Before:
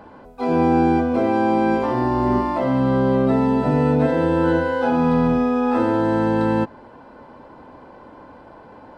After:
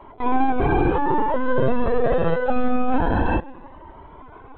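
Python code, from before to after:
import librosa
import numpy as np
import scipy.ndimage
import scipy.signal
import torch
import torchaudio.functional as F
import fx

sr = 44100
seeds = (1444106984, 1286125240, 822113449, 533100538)

y = scipy.signal.sosfilt(scipy.signal.butter(16, 190.0, 'highpass', fs=sr, output='sos'), x)
y = fx.stretch_grains(y, sr, factor=0.51, grain_ms=54.0)
y = fx.echo_feedback(y, sr, ms=137, feedback_pct=55, wet_db=-22.5)
y = fx.lpc_vocoder(y, sr, seeds[0], excitation='pitch_kept', order=16)
y = fx.comb_cascade(y, sr, direction='rising', hz=0.25)
y = y * librosa.db_to_amplitude(6.0)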